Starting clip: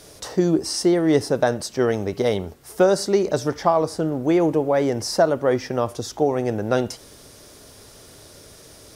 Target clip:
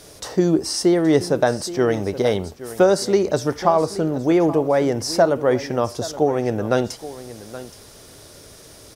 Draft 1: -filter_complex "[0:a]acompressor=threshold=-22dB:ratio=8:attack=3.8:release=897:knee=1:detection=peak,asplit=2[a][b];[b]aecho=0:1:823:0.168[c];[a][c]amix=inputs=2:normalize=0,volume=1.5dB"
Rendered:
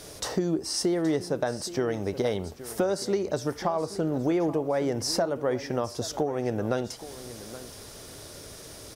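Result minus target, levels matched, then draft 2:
compressor: peak gain reduction +12.5 dB
-filter_complex "[0:a]asplit=2[a][b];[b]aecho=0:1:823:0.168[c];[a][c]amix=inputs=2:normalize=0,volume=1.5dB"

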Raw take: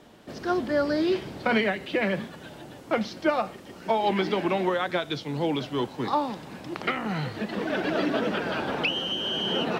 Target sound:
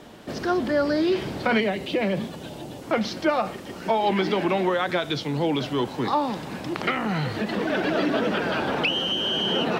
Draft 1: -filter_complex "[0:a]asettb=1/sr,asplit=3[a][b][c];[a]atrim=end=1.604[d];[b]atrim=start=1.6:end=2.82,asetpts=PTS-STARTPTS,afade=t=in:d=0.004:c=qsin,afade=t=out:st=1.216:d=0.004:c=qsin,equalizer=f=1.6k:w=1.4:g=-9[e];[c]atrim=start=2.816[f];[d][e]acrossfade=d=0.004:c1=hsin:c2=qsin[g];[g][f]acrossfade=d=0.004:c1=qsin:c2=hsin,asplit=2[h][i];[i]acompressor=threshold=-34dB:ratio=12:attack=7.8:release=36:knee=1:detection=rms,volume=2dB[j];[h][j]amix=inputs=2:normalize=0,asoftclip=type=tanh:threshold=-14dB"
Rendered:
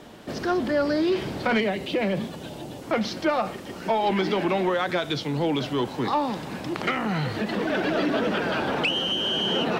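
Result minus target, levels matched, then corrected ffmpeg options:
soft clip: distortion +13 dB
-filter_complex "[0:a]asettb=1/sr,asplit=3[a][b][c];[a]atrim=end=1.604[d];[b]atrim=start=1.6:end=2.82,asetpts=PTS-STARTPTS,afade=t=in:d=0.004:c=qsin,afade=t=out:st=1.216:d=0.004:c=qsin,equalizer=f=1.6k:w=1.4:g=-9[e];[c]atrim=start=2.816[f];[d][e]acrossfade=d=0.004:c1=hsin:c2=qsin[g];[g][f]acrossfade=d=0.004:c1=qsin:c2=hsin,asplit=2[h][i];[i]acompressor=threshold=-34dB:ratio=12:attack=7.8:release=36:knee=1:detection=rms,volume=2dB[j];[h][j]amix=inputs=2:normalize=0,asoftclip=type=tanh:threshold=-6.5dB"

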